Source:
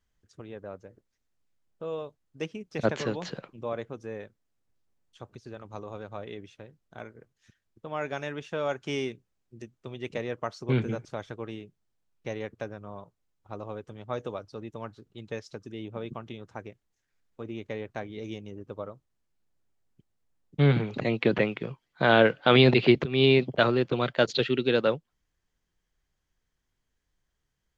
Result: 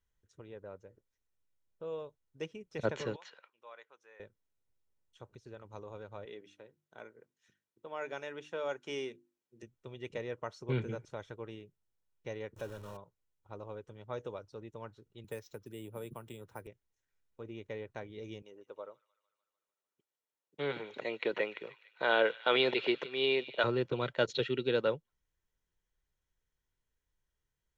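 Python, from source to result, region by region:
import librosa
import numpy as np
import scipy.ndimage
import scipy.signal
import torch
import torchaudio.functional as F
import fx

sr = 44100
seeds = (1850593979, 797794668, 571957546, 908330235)

y = fx.chain(x, sr, fx.highpass(hz=1300.0, slope=12),
    fx.high_shelf(hz=4000.0, db=-10.0), at=(3.16, 4.2))
y = fx.chain(y, sr, fx.highpass(hz=210.0, slope=12),
    fx.hum_notches(base_hz=50, count=7), at=(6.25, 9.63))
y = fx.chain(y, sr, fx.zero_step(step_db=-40.0),
    fx.peak_eq(hz=2100.0, db=-9.5, octaves=0.2),
    fx.notch(hz=730.0, q=13.0), at=(12.56, 12.97))
y = fx.chain(y, sr, fx.resample_bad(factor=4, down='none', up='hold'),
    fx.band_squash(depth_pct=40), at=(15.24, 16.67))
y = fx.chain(y, sr, fx.highpass(hz=410.0, slope=12),
    fx.echo_wet_highpass(ms=149, feedback_pct=62, hz=2100.0, wet_db=-14.5), at=(18.42, 23.64))
y = fx.notch(y, sr, hz=4700.0, q=9.5)
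y = y + 0.31 * np.pad(y, (int(2.1 * sr / 1000.0), 0))[:len(y)]
y = y * 10.0 ** (-7.5 / 20.0)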